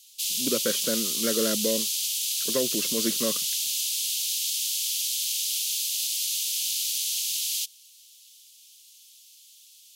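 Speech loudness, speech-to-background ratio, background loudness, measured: -30.0 LUFS, -4.5 dB, -25.5 LUFS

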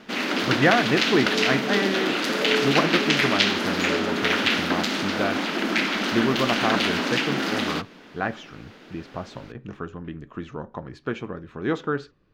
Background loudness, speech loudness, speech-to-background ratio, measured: -23.0 LUFS, -27.5 LUFS, -4.5 dB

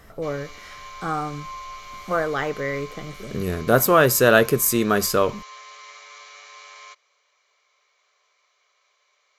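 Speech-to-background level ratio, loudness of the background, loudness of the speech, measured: 20.0 dB, -40.5 LUFS, -20.5 LUFS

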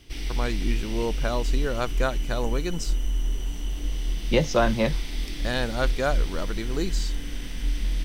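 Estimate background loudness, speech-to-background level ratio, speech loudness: -31.5 LUFS, 3.0 dB, -28.5 LUFS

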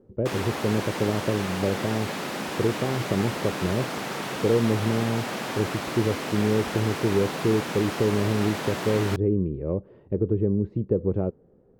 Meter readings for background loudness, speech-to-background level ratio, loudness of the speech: -31.0 LUFS, 4.5 dB, -26.5 LUFS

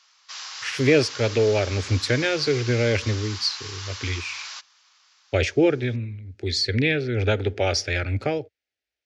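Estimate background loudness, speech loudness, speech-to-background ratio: -34.5 LUFS, -23.5 LUFS, 11.0 dB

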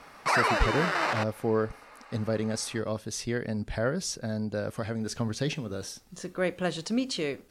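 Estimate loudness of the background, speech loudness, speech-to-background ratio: -27.5 LUFS, -32.0 LUFS, -4.5 dB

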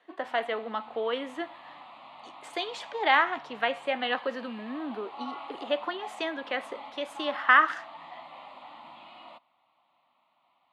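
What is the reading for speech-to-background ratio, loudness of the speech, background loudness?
16.5 dB, -29.0 LUFS, -45.5 LUFS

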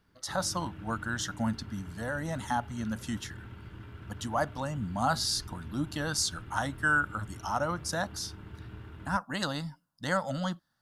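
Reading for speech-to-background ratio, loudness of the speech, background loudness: 14.0 dB, -32.5 LUFS, -46.5 LUFS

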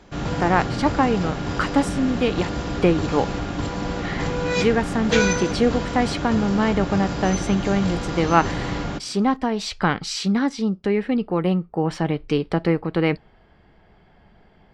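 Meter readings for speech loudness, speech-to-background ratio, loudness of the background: -22.5 LUFS, 4.0 dB, -26.5 LUFS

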